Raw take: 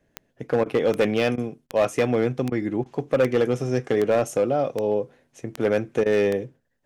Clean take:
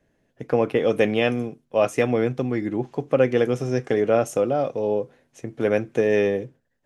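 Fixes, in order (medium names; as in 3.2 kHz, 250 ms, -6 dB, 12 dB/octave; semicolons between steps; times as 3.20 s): clip repair -13.5 dBFS; de-click; interpolate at 0.64/1.36/1.67/2.50/2.84/6.04 s, 17 ms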